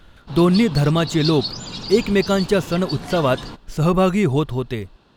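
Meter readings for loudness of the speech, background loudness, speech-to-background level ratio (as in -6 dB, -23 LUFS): -19.0 LUFS, -30.0 LUFS, 11.0 dB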